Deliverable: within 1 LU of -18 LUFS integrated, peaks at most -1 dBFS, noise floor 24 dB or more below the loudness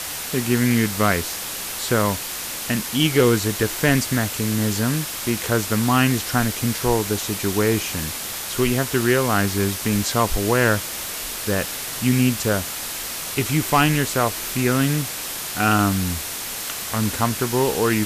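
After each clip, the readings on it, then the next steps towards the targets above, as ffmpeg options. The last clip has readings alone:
noise floor -30 dBFS; noise floor target -45 dBFS; loudness -21.0 LUFS; peak level -6.5 dBFS; loudness target -18.0 LUFS
-> -af "afftdn=nr=15:nf=-30"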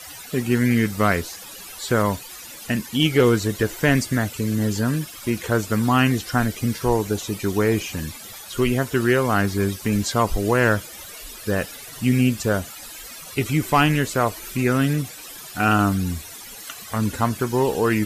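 noise floor -39 dBFS; noise floor target -46 dBFS
-> -af "afftdn=nr=7:nf=-39"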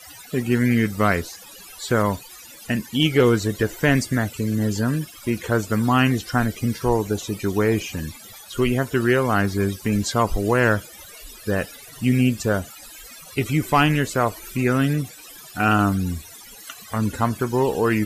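noise floor -43 dBFS; noise floor target -46 dBFS
-> -af "afftdn=nr=6:nf=-43"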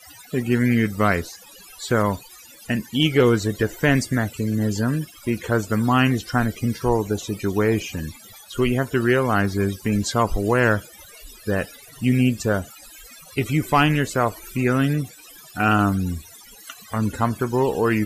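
noise floor -46 dBFS; loudness -22.0 LUFS; peak level -6.5 dBFS; loudness target -18.0 LUFS
-> -af "volume=1.58"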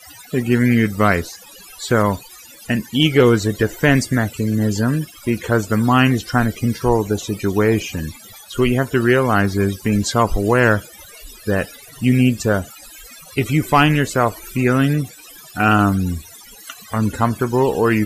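loudness -18.0 LUFS; peak level -2.5 dBFS; noise floor -42 dBFS

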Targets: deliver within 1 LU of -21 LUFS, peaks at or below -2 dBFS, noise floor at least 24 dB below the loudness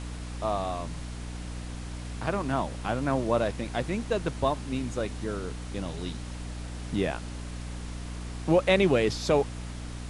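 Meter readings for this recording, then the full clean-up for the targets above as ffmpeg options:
hum 60 Hz; highest harmonic 300 Hz; hum level -35 dBFS; noise floor -38 dBFS; noise floor target -54 dBFS; loudness -30.0 LUFS; peak level -9.0 dBFS; loudness target -21.0 LUFS
-> -af "bandreject=f=60:t=h:w=6,bandreject=f=120:t=h:w=6,bandreject=f=180:t=h:w=6,bandreject=f=240:t=h:w=6,bandreject=f=300:t=h:w=6"
-af "afftdn=nr=16:nf=-38"
-af "volume=2.82,alimiter=limit=0.794:level=0:latency=1"

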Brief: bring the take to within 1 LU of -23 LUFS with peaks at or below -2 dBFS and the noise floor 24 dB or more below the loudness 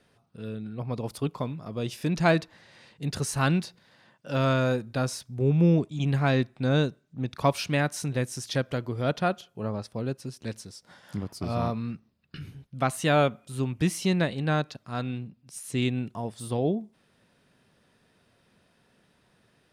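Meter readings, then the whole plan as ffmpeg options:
loudness -28.0 LUFS; peak level -9.0 dBFS; loudness target -23.0 LUFS
-> -af "volume=1.78"

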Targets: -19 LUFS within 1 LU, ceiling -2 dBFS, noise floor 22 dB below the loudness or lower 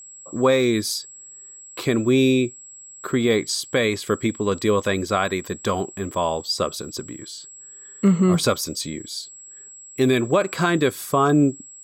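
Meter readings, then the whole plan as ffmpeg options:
steady tone 7.7 kHz; tone level -40 dBFS; loudness -21.5 LUFS; peak level -8.0 dBFS; loudness target -19.0 LUFS
-> -af "bandreject=f=7700:w=30"
-af "volume=1.33"

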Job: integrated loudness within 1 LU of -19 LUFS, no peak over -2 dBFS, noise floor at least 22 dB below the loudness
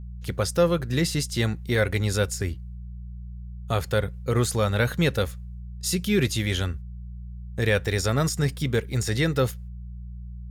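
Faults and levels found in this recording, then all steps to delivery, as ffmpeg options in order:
hum 60 Hz; highest harmonic 180 Hz; hum level -34 dBFS; loudness -25.0 LUFS; peak level -9.5 dBFS; loudness target -19.0 LUFS
-> -af "bandreject=f=60:t=h:w=4,bandreject=f=120:t=h:w=4,bandreject=f=180:t=h:w=4"
-af "volume=2"

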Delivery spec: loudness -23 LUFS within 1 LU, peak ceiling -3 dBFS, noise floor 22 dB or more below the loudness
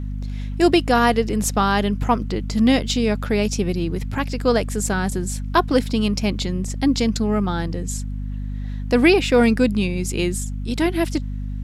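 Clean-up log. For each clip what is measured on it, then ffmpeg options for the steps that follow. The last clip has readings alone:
hum 50 Hz; highest harmonic 250 Hz; hum level -24 dBFS; loudness -21.0 LUFS; peak level -3.5 dBFS; loudness target -23.0 LUFS
-> -af "bandreject=f=50:t=h:w=4,bandreject=f=100:t=h:w=4,bandreject=f=150:t=h:w=4,bandreject=f=200:t=h:w=4,bandreject=f=250:t=h:w=4"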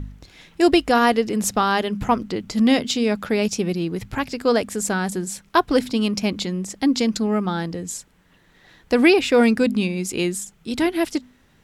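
hum not found; loudness -21.0 LUFS; peak level -3.5 dBFS; loudness target -23.0 LUFS
-> -af "volume=0.794"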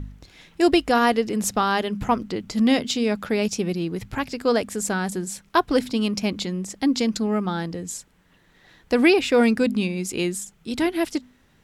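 loudness -23.0 LUFS; peak level -5.5 dBFS; noise floor -59 dBFS

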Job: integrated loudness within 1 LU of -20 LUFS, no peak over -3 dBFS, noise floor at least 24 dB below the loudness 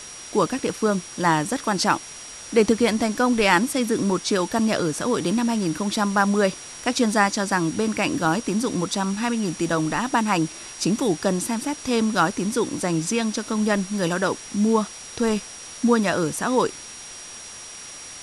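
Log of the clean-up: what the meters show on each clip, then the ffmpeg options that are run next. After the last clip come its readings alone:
steady tone 5.7 kHz; tone level -40 dBFS; noise floor -39 dBFS; noise floor target -47 dBFS; loudness -22.5 LUFS; peak level -4.5 dBFS; loudness target -20.0 LUFS
-> -af "bandreject=f=5700:w=30"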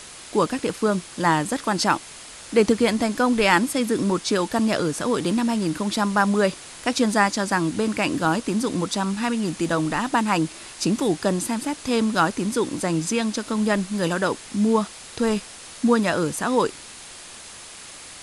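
steady tone not found; noise floor -41 dBFS; noise floor target -47 dBFS
-> -af "afftdn=nr=6:nf=-41"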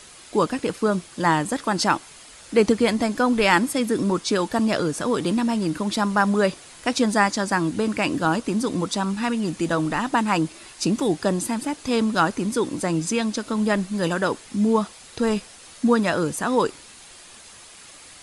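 noise floor -46 dBFS; noise floor target -47 dBFS
-> -af "afftdn=nr=6:nf=-46"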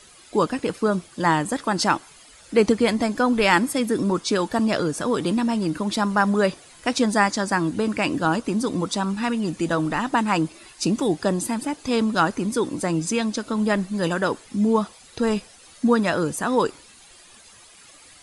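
noise floor -49 dBFS; loudness -23.0 LUFS; peak level -4.5 dBFS; loudness target -20.0 LUFS
-> -af "volume=1.41,alimiter=limit=0.708:level=0:latency=1"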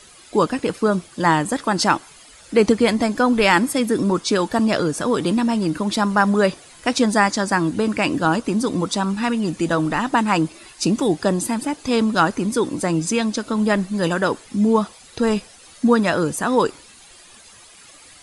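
loudness -20.0 LUFS; peak level -3.0 dBFS; noise floor -46 dBFS

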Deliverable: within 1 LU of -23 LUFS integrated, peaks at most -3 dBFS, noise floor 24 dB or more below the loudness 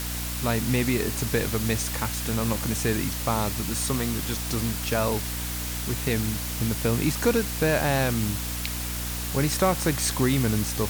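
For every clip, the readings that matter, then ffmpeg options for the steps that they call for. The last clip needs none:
hum 60 Hz; highest harmonic 300 Hz; hum level -31 dBFS; noise floor -31 dBFS; noise floor target -50 dBFS; loudness -25.5 LUFS; peak level -8.0 dBFS; loudness target -23.0 LUFS
-> -af "bandreject=f=60:t=h:w=6,bandreject=f=120:t=h:w=6,bandreject=f=180:t=h:w=6,bandreject=f=240:t=h:w=6,bandreject=f=300:t=h:w=6"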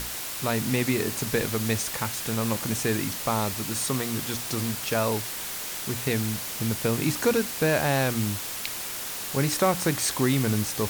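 hum not found; noise floor -34 dBFS; noise floor target -51 dBFS
-> -af "afftdn=nr=17:nf=-34"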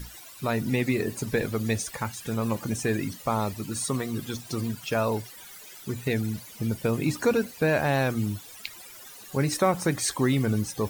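noise floor -46 dBFS; noise floor target -52 dBFS
-> -af "afftdn=nr=6:nf=-46"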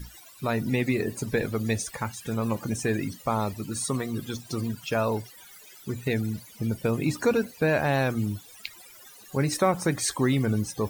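noise floor -50 dBFS; noise floor target -52 dBFS
-> -af "afftdn=nr=6:nf=-50"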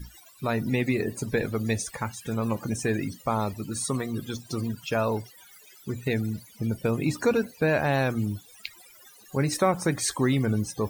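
noise floor -53 dBFS; loudness -28.0 LUFS; peak level -10.0 dBFS; loudness target -23.0 LUFS
-> -af "volume=1.78"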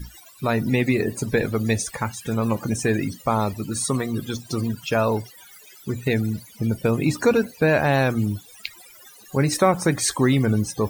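loudness -23.0 LUFS; peak level -5.0 dBFS; noise floor -48 dBFS

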